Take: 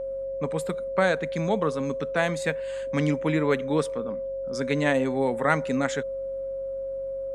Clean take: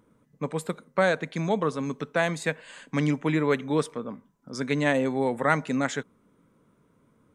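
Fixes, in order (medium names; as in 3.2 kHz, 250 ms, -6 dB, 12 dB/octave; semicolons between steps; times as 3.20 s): de-hum 47 Hz, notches 6; band-stop 540 Hz, Q 30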